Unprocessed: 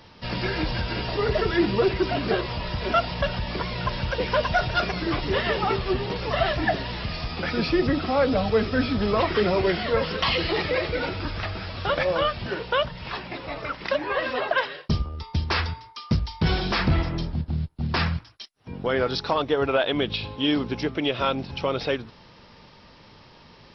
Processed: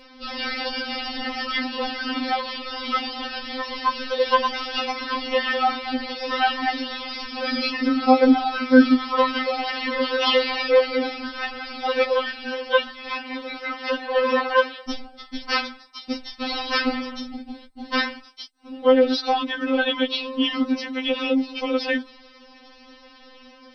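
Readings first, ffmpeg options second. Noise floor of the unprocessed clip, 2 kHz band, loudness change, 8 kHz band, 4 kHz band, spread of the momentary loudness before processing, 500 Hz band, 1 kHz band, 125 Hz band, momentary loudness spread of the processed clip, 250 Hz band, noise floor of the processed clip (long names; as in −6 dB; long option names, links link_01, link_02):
−51 dBFS, +2.5 dB, +2.5 dB, can't be measured, +3.5 dB, 8 LU, +1.5 dB, +3.5 dB, below −25 dB, 13 LU, +4.0 dB, −49 dBFS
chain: -af "afftfilt=real='re*3.46*eq(mod(b,12),0)':imag='im*3.46*eq(mod(b,12),0)':win_size=2048:overlap=0.75,volume=5.5dB"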